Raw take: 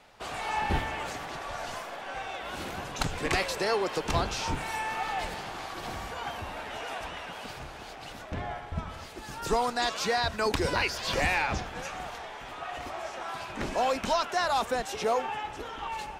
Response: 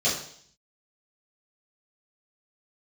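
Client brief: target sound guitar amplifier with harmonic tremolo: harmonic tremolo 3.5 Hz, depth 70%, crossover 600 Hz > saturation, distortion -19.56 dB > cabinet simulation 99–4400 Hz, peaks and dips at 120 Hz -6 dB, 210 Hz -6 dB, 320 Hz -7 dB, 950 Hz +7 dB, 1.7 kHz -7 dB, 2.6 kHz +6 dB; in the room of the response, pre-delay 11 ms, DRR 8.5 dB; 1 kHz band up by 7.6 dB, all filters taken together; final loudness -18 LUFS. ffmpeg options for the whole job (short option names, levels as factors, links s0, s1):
-filter_complex "[0:a]equalizer=f=1000:t=o:g=5,asplit=2[s0][s1];[1:a]atrim=start_sample=2205,adelay=11[s2];[s1][s2]afir=irnorm=-1:irlink=0,volume=0.0891[s3];[s0][s3]amix=inputs=2:normalize=0,acrossover=split=600[s4][s5];[s4]aeval=exprs='val(0)*(1-0.7/2+0.7/2*cos(2*PI*3.5*n/s))':c=same[s6];[s5]aeval=exprs='val(0)*(1-0.7/2-0.7/2*cos(2*PI*3.5*n/s))':c=same[s7];[s6][s7]amix=inputs=2:normalize=0,asoftclip=threshold=0.112,highpass=99,equalizer=f=120:t=q:w=4:g=-6,equalizer=f=210:t=q:w=4:g=-6,equalizer=f=320:t=q:w=4:g=-7,equalizer=f=950:t=q:w=4:g=7,equalizer=f=1700:t=q:w=4:g=-7,equalizer=f=2600:t=q:w=4:g=6,lowpass=f=4400:w=0.5412,lowpass=f=4400:w=1.3066,volume=4.47"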